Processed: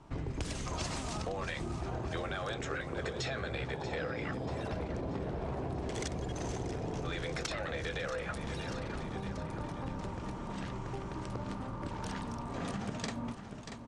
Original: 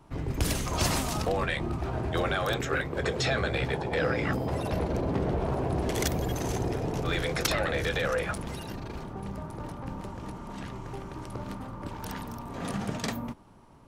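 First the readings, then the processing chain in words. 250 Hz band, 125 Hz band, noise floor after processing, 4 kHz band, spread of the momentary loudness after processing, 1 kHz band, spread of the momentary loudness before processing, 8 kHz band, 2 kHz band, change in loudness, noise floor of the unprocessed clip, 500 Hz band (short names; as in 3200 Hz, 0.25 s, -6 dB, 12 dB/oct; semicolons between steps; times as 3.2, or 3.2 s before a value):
-6.0 dB, -7.0 dB, -43 dBFS, -8.0 dB, 4 LU, -7.0 dB, 12 LU, -9.0 dB, -8.0 dB, -7.5 dB, -41 dBFS, -8.0 dB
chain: on a send: feedback echo 0.635 s, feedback 51%, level -14 dB; on the sum: compressor, threshold -34 dBFS, peak gain reduction 12.5 dB; steep low-pass 8900 Hz 36 dB/oct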